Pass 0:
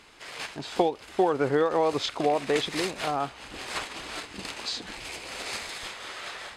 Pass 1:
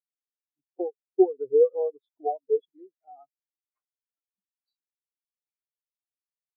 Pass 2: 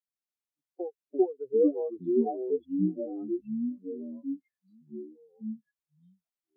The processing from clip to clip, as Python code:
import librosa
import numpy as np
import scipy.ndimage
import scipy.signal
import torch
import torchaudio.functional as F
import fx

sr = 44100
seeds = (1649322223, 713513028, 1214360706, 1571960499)

y1 = fx.spectral_expand(x, sr, expansion=4.0)
y2 = fx.echo_pitch(y1, sr, ms=137, semitones=-4, count=3, db_per_echo=-3.0)
y2 = y2 * 10.0 ** (-5.5 / 20.0)